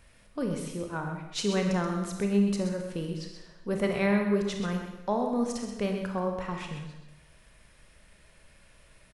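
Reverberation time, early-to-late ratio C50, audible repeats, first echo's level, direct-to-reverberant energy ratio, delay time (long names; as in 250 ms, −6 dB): 1.0 s, 4.0 dB, 1, −9.0 dB, 2.5 dB, 129 ms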